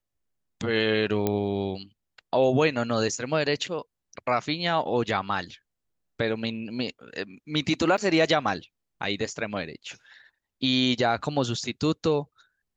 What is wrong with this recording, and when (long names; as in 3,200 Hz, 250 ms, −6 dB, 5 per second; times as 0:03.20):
0:01.27: click −11 dBFS
0:07.97–0:07.98: drop-out 7.1 ms